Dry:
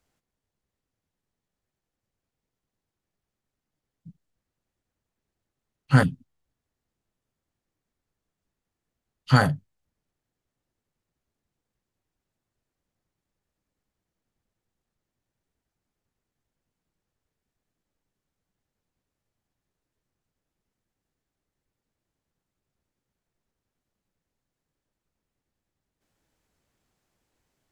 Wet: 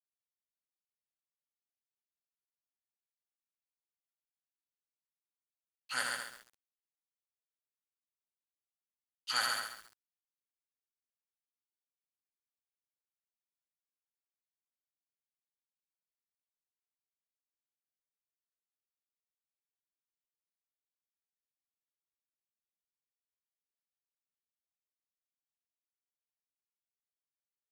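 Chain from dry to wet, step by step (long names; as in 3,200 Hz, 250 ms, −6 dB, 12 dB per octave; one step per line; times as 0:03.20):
in parallel at −2 dB: downward compressor 6 to 1, threshold −28 dBFS, peak gain reduction 16 dB
on the sum: first difference
mains-hum notches 50/100/150 Hz
ambience of single reflections 47 ms −14 dB, 79 ms −4.5 dB
on a send at −11 dB: convolution reverb RT60 0.65 s, pre-delay 3 ms
on the sum: bit reduction 10 bits
meter weighting curve A
feedback echo at a low word length 135 ms, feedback 35%, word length 9 bits, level −3.5 dB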